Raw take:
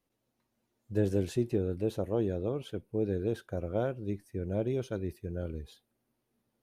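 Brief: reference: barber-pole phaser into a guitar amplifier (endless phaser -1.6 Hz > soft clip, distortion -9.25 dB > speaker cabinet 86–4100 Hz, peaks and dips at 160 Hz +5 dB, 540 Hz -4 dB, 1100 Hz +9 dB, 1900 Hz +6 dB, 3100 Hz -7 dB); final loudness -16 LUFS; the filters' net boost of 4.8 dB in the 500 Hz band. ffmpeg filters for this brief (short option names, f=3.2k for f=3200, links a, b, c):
-filter_complex "[0:a]equalizer=f=500:t=o:g=7.5,asplit=2[a][b];[b]afreqshift=-1.6[c];[a][c]amix=inputs=2:normalize=1,asoftclip=threshold=-28dB,highpass=86,equalizer=f=160:t=q:w=4:g=5,equalizer=f=540:t=q:w=4:g=-4,equalizer=f=1.1k:t=q:w=4:g=9,equalizer=f=1.9k:t=q:w=4:g=6,equalizer=f=3.1k:t=q:w=4:g=-7,lowpass=f=4.1k:w=0.5412,lowpass=f=4.1k:w=1.3066,volume=21dB"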